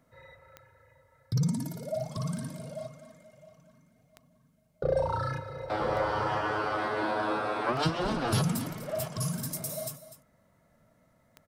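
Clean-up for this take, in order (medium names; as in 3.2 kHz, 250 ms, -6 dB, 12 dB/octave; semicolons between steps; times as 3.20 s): de-click; inverse comb 249 ms -14 dB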